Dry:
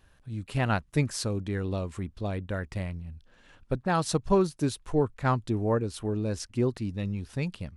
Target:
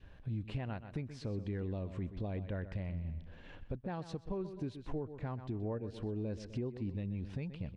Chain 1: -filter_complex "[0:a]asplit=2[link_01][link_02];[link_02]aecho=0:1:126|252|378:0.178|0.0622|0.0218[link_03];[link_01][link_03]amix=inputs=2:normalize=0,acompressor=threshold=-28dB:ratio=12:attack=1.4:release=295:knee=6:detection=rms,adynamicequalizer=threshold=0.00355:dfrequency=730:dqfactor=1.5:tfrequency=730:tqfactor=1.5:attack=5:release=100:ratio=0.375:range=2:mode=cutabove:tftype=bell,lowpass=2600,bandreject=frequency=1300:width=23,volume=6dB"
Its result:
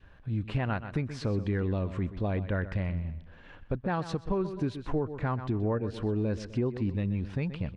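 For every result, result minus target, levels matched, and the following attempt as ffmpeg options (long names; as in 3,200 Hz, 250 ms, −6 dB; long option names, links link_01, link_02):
downward compressor: peak gain reduction −9 dB; 1,000 Hz band +3.0 dB
-filter_complex "[0:a]asplit=2[link_01][link_02];[link_02]aecho=0:1:126|252|378:0.178|0.0622|0.0218[link_03];[link_01][link_03]amix=inputs=2:normalize=0,acompressor=threshold=-38dB:ratio=12:attack=1.4:release=295:knee=6:detection=rms,adynamicequalizer=threshold=0.00355:dfrequency=730:dqfactor=1.5:tfrequency=730:tqfactor=1.5:attack=5:release=100:ratio=0.375:range=2:mode=cutabove:tftype=bell,lowpass=2600,bandreject=frequency=1300:width=23,volume=6dB"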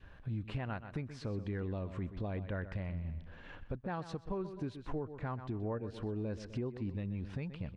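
1,000 Hz band +3.5 dB
-filter_complex "[0:a]asplit=2[link_01][link_02];[link_02]aecho=0:1:126|252|378:0.178|0.0622|0.0218[link_03];[link_01][link_03]amix=inputs=2:normalize=0,acompressor=threshold=-38dB:ratio=12:attack=1.4:release=295:knee=6:detection=rms,adynamicequalizer=threshold=0.00355:dfrequency=730:dqfactor=1.5:tfrequency=730:tqfactor=1.5:attack=5:release=100:ratio=0.375:range=2:mode=cutabove:tftype=bell,lowpass=2600,equalizer=frequency=1300:width=1.2:gain=-7,bandreject=frequency=1300:width=23,volume=6dB"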